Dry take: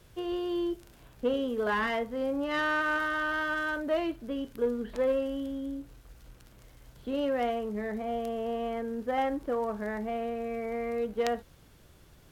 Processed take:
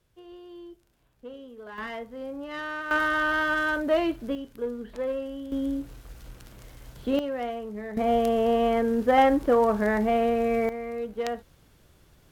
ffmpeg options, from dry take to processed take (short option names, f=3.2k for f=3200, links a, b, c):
-af "asetnsamples=n=441:p=0,asendcmd='1.78 volume volume -5.5dB;2.91 volume volume 5.5dB;4.35 volume volume -2.5dB;5.52 volume volume 7.5dB;7.19 volume volume -2dB;7.97 volume volume 10dB;10.69 volume volume -1dB',volume=-13.5dB"